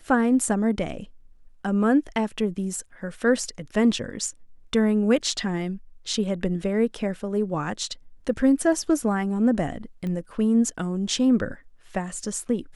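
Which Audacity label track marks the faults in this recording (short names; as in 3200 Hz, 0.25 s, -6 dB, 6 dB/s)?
10.070000	10.070000	pop -22 dBFS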